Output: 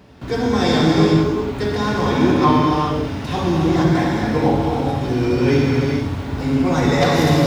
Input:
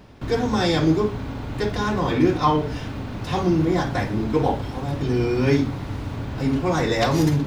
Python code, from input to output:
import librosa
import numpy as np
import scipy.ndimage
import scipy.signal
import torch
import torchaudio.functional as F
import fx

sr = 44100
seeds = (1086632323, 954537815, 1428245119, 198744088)

y = scipy.signal.sosfilt(scipy.signal.butter(2, 58.0, 'highpass', fs=sr, output='sos'), x)
y = fx.room_flutter(y, sr, wall_m=11.6, rt60_s=0.43)
y = fx.rev_gated(y, sr, seeds[0], gate_ms=470, shape='flat', drr_db=-2.5)